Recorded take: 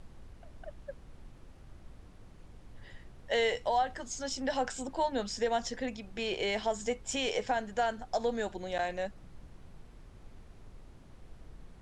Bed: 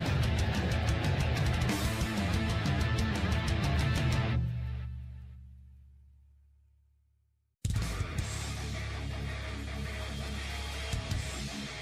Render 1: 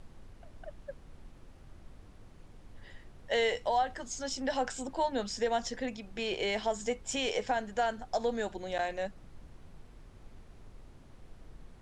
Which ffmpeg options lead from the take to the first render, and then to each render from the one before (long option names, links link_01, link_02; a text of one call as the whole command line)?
ffmpeg -i in.wav -af "bandreject=frequency=60:width_type=h:width=4,bandreject=frequency=120:width_type=h:width=4,bandreject=frequency=180:width_type=h:width=4" out.wav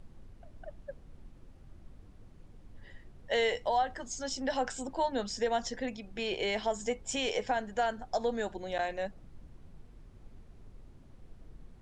ffmpeg -i in.wav -af "afftdn=noise_reduction=6:noise_floor=-55" out.wav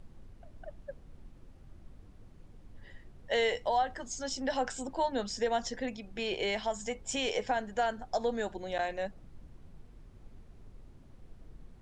ffmpeg -i in.wav -filter_complex "[0:a]asettb=1/sr,asplit=3[link_01][link_02][link_03];[link_01]atrim=end=6.554[link_04];[link_02]atrim=start=6.55:end=6.95,asetpts=PTS-STARTPTS,afade=type=in:duration=0.004:curve=qsin,afade=type=out:start_time=0.396:duration=0.004:curve=qsin,equalizer=frequency=360:width_type=o:width=0.77:gain=-9.5[link_05];[link_03]atrim=start=6.946[link_06];[link_04][link_05]acrossfade=duration=0.004:curve1=hsin:curve2=qsin[link_07];[link_07][link_06]acrossfade=duration=0.004:curve1=qsin:curve2=hsin" out.wav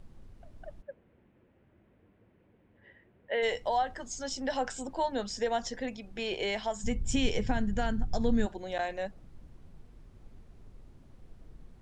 ffmpeg -i in.wav -filter_complex "[0:a]asplit=3[link_01][link_02][link_03];[link_01]afade=type=out:start_time=0.81:duration=0.02[link_04];[link_02]highpass=150,equalizer=frequency=150:width_type=q:width=4:gain=-9,equalizer=frequency=260:width_type=q:width=4:gain=-5,equalizer=frequency=780:width_type=q:width=4:gain=-5,equalizer=frequency=1200:width_type=q:width=4:gain=-7,lowpass=frequency=2600:width=0.5412,lowpass=frequency=2600:width=1.3066,afade=type=in:start_time=0.81:duration=0.02,afade=type=out:start_time=3.42:duration=0.02[link_05];[link_03]afade=type=in:start_time=3.42:duration=0.02[link_06];[link_04][link_05][link_06]amix=inputs=3:normalize=0,asplit=3[link_07][link_08][link_09];[link_07]afade=type=out:start_time=6.83:duration=0.02[link_10];[link_08]asubboost=boost=10.5:cutoff=190,afade=type=in:start_time=6.83:duration=0.02,afade=type=out:start_time=8.45:duration=0.02[link_11];[link_09]afade=type=in:start_time=8.45:duration=0.02[link_12];[link_10][link_11][link_12]amix=inputs=3:normalize=0" out.wav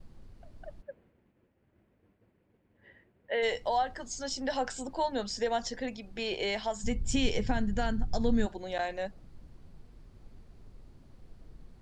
ffmpeg -i in.wav -af "agate=range=-33dB:threshold=-59dB:ratio=3:detection=peak,equalizer=frequency=4500:width_type=o:width=0.29:gain=5.5" out.wav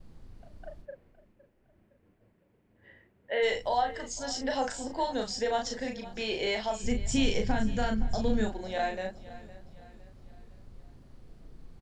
ffmpeg -i in.wav -filter_complex "[0:a]asplit=2[link_01][link_02];[link_02]adelay=37,volume=-4dB[link_03];[link_01][link_03]amix=inputs=2:normalize=0,aecho=1:1:511|1022|1533|2044:0.126|0.0541|0.0233|0.01" out.wav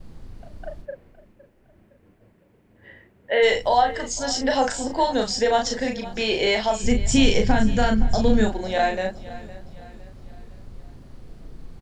ffmpeg -i in.wav -af "volume=9.5dB" out.wav